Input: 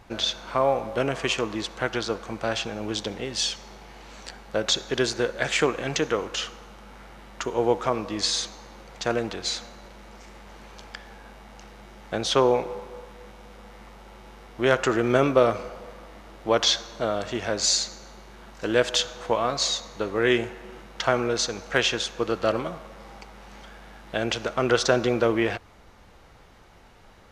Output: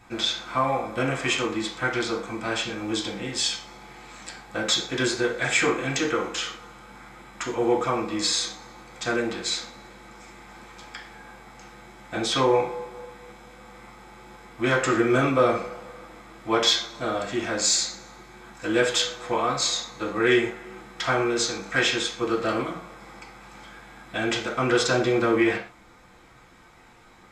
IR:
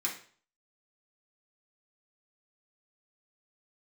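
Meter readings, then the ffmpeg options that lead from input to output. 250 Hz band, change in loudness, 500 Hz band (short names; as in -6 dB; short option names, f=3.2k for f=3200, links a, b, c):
+2.5 dB, +0.5 dB, -1.0 dB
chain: -filter_complex "[0:a]acontrast=51[a];[1:a]atrim=start_sample=2205,afade=t=out:st=0.19:d=0.01,atrim=end_sample=8820[b];[a][b]afir=irnorm=-1:irlink=0,volume=-7.5dB"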